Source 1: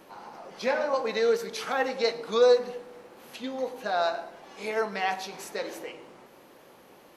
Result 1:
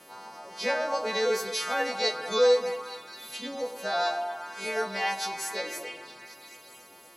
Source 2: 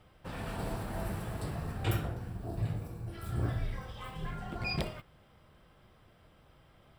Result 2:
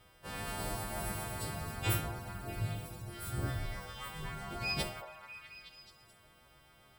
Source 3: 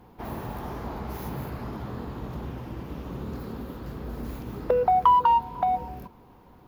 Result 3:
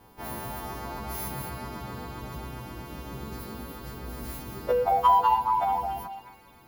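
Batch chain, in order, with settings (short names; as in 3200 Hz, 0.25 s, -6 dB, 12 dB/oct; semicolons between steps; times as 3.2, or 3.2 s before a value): frequency quantiser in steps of 2 st; vibrato 7.5 Hz 10 cents; delay with a stepping band-pass 0.216 s, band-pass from 770 Hz, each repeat 0.7 oct, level -5 dB; gain -1.5 dB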